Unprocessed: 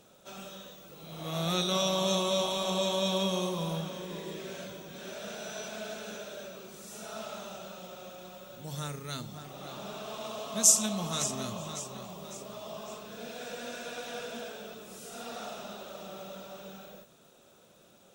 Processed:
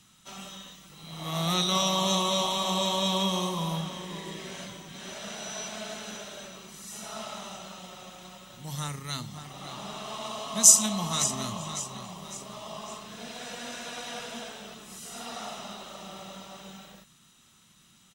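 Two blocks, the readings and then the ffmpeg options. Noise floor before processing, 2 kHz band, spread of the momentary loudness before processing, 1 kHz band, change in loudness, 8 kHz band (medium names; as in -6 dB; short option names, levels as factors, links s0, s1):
-60 dBFS, +2.5 dB, 18 LU, +5.0 dB, +5.5 dB, +5.5 dB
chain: -filter_complex "[0:a]lowshelf=f=470:g=-4,aecho=1:1:1:0.45,acrossover=split=290|1100|5600[s0][s1][s2][s3];[s1]aeval=exprs='sgn(val(0))*max(abs(val(0))-0.00106,0)':c=same[s4];[s0][s4][s2][s3]amix=inputs=4:normalize=0,aresample=32000,aresample=44100,volume=1.68"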